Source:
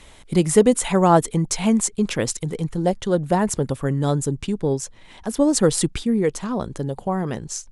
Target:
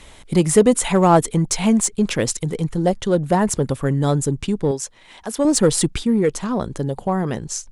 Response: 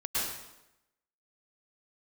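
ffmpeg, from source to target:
-filter_complex "[0:a]asettb=1/sr,asplit=3[a][b][c];[a]atrim=end=4.714[d];[b]atrim=start=4.71:end=5.45,asetpts=PTS-STARTPTS,afade=t=in:d=0.004:c=qsin,afade=t=out:st=0.736:d=0.004:c=qsin,lowshelf=f=280:g=-12[e];[c]atrim=start=5.446[f];[d][e]acrossfade=d=0.004:c1=hsin:c2=qsin[g];[g][f]acrossfade=d=0.004:c1=qsin:c2=hsin,asplit=2[h][i];[i]asoftclip=type=hard:threshold=-17.5dB,volume=-8dB[j];[h][j]amix=inputs=2:normalize=0"

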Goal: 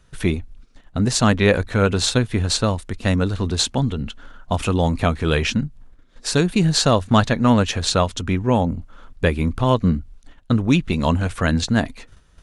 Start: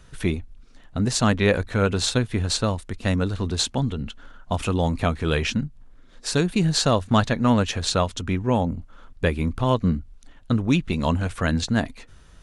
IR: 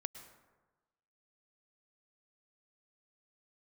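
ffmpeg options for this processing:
-af "agate=range=-9dB:threshold=-45dB:ratio=16:detection=peak,volume=3.5dB"

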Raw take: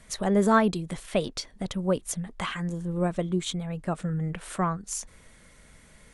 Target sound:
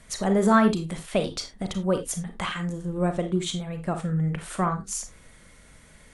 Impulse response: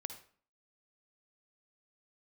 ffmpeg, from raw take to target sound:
-filter_complex "[1:a]atrim=start_sample=2205,afade=t=out:st=0.21:d=0.01,atrim=end_sample=9702,asetrate=66150,aresample=44100[a];[0:a][a]afir=irnorm=-1:irlink=0,volume=8dB"

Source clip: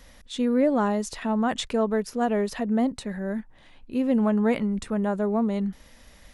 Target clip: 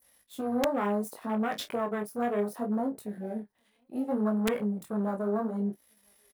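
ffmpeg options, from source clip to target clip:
-filter_complex "[0:a]aeval=exprs='if(lt(val(0),0),0.251*val(0),val(0))':c=same,highpass=f=320:p=1,asplit=2[a][b];[b]adelay=991.3,volume=-27dB,highshelf=f=4k:g=-22.3[c];[a][c]amix=inputs=2:normalize=0,flanger=delay=18:depth=7.5:speed=0.68,afwtdn=0.00891,asplit=2[d][e];[e]adelay=29,volume=-11.5dB[f];[d][f]amix=inputs=2:normalize=0,asplit=2[g][h];[h]alimiter=level_in=5.5dB:limit=-24dB:level=0:latency=1:release=126,volume=-5.5dB,volume=-0.5dB[i];[g][i]amix=inputs=2:normalize=0,adynamicequalizer=threshold=0.002:dfrequency=2900:dqfactor=1.1:tfrequency=2900:tqfactor=1.1:attack=5:release=100:ratio=0.375:range=4:mode=cutabove:tftype=bell,aexciter=amount=5:drive=3.5:freq=9.2k,highshelf=f=6.4k:g=6.5,aeval=exprs='(mod(7.5*val(0)+1,2)-1)/7.5':c=same"

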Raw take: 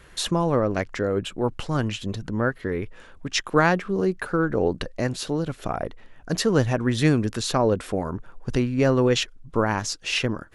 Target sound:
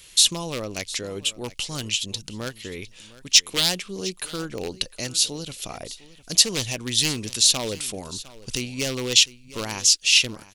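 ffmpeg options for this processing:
-af "aeval=exprs='0.224*(abs(mod(val(0)/0.224+3,4)-2)-1)':c=same,aecho=1:1:706:0.119,aexciter=amount=10.5:drive=4.6:freq=2.4k,volume=-9dB"

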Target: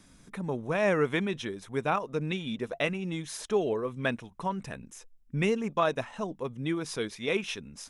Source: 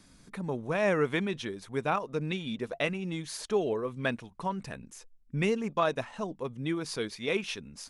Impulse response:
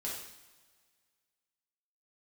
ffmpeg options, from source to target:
-af "bandreject=f=4.5k:w=7.3,volume=1dB"

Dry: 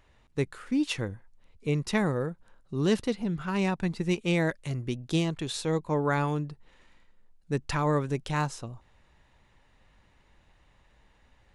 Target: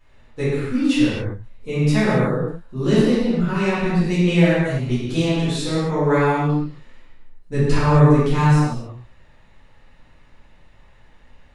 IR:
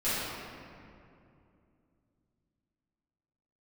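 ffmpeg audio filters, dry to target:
-filter_complex "[0:a]asettb=1/sr,asplit=3[a][b][c];[a]atrim=end=7.524[d];[b]atrim=start=7.52:end=8.5,asetpts=PTS-STARTPTS,afade=t=in:d=0.004:c=qsin,afade=t=out:st=0.976:d=0.004:c=qsin,lowshelf=f=200:g=7[e];[c]atrim=start=8.496[f];[d][e]acrossfade=d=0.004:c1=hsin:c2=qsin[g];[g][f]acrossfade=d=0.004:c1=qsin:c2=hsin[h];[1:a]atrim=start_sample=2205,afade=t=out:st=0.34:d=0.01,atrim=end_sample=15435[i];[h][i]afir=irnorm=-1:irlink=0,volume=-1dB"

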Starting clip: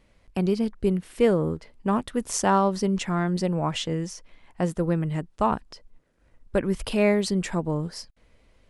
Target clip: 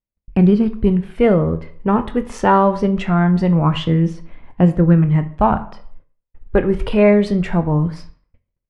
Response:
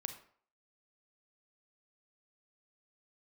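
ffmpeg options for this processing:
-filter_complex "[0:a]agate=range=-45dB:threshold=-52dB:ratio=16:detection=peak,aphaser=in_gain=1:out_gain=1:delay=2.5:decay=0.38:speed=0.23:type=triangular,bass=f=250:g=4,treble=f=4k:g=-13,asplit=2[a][b];[b]adelay=24,volume=-13dB[c];[a][c]amix=inputs=2:normalize=0,asplit=2[d][e];[1:a]atrim=start_sample=2205,lowpass=4.2k[f];[e][f]afir=irnorm=-1:irlink=0,volume=2.5dB[g];[d][g]amix=inputs=2:normalize=0,volume=1dB"

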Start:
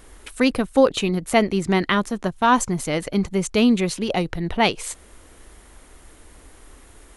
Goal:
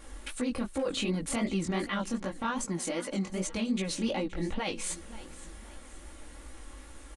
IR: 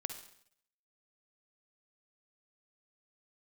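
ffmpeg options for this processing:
-filter_complex "[0:a]acompressor=threshold=-25dB:ratio=2,aecho=1:1:3.6:0.69,asettb=1/sr,asplit=3[a][b][c];[a]atrim=end=0.774[d];[b]atrim=start=0.77:end=1.46,asetpts=PTS-STARTPTS,afade=t=in:d=0.004:c=qsin,afade=t=out:st=0.686:d=0.004:c=qsin,acontrast=80[e];[c]atrim=start=1.456[f];[d][e]acrossfade=d=0.004:c1=hsin:c2=qsin[g];[g][f]acrossfade=d=0.004:c1=qsin:c2=hsin,aresample=22050,aresample=44100,alimiter=limit=-20.5dB:level=0:latency=1:release=32,asettb=1/sr,asplit=3[h][i][j];[h]atrim=end=2.644[k];[i]atrim=start=2.64:end=3.3,asetpts=PTS-STARTPTS,afade=t=in:d=0.004:c=qsin,afade=t=out:st=0.656:d=0.004:c=qsin,highpass=180[l];[j]atrim=start=3.296[m];[k][l]acrossfade=d=0.004:c1=hsin:c2=qsin[n];[n][m]acrossfade=d=0.004:c1=qsin:c2=hsin,asettb=1/sr,asplit=3[o][p][q];[o]atrim=end=4.164[r];[p]atrim=start=4.16:end=4.59,asetpts=PTS-STARTPTS,afade=t=in:d=0.004:c=qsin,afade=t=out:st=0.426:d=0.004:c=qsin,highshelf=f=5.2k:g=-10[s];[q]atrim=start=4.586[t];[r][s]acrossfade=d=0.004:c1=hsin:c2=qsin[u];[u][t]acrossfade=d=0.004:c1=qsin:c2=hsin,aecho=1:1:524|1048|1572|2096:0.141|0.0593|0.0249|0.0105,flanger=delay=15:depth=7.5:speed=2.6"

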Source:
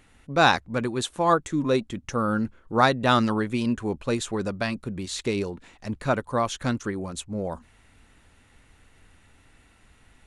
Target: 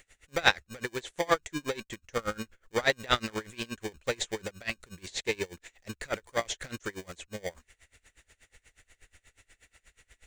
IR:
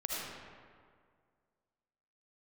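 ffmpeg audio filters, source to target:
-filter_complex "[0:a]asplit=2[a][b];[b]acrusher=samples=33:mix=1:aa=0.000001,volume=-6.5dB[c];[a][c]amix=inputs=2:normalize=0,equalizer=f=125:t=o:w=1:g=-7,equalizer=f=250:t=o:w=1:g=-10,equalizer=f=500:t=o:w=1:g=4,equalizer=f=1k:t=o:w=1:g=-5,equalizer=f=2k:t=o:w=1:g=9,equalizer=f=4k:t=o:w=1:g=4,equalizer=f=8k:t=o:w=1:g=9,acrossover=split=5300[d][e];[e]acompressor=threshold=-42dB:ratio=4:attack=1:release=60[f];[d][f]amix=inputs=2:normalize=0,aexciter=amount=1.7:drive=3.5:freq=6k,aeval=exprs='val(0)*pow(10,-26*(0.5-0.5*cos(2*PI*8.3*n/s))/20)':c=same,volume=-3dB"

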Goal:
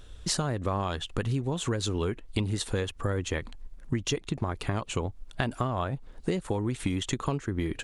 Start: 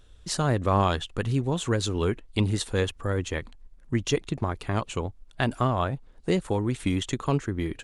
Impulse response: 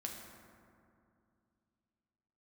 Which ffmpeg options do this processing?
-af "acompressor=threshold=-32dB:ratio=10,volume=6.5dB"

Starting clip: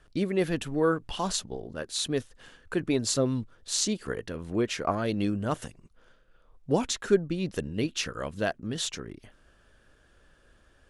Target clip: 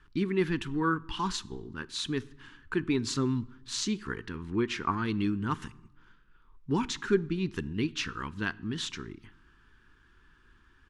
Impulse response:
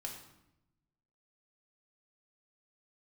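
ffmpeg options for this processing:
-filter_complex "[0:a]firequalizer=gain_entry='entry(380,0);entry(590,-27);entry(930,3);entry(9900,-13)':delay=0.05:min_phase=1,asplit=2[a][b];[1:a]atrim=start_sample=2205[c];[b][c]afir=irnorm=-1:irlink=0,volume=-13.5dB[d];[a][d]amix=inputs=2:normalize=0,volume=-1.5dB"

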